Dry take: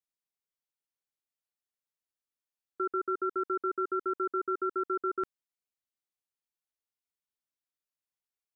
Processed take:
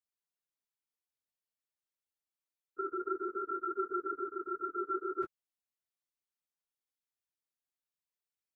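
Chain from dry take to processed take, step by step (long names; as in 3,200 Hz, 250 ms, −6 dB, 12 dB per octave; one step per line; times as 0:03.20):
random phases in long frames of 50 ms
0:04.27–0:04.75: dynamic equaliser 580 Hz, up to −6 dB, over −46 dBFS, Q 0.87
level −4 dB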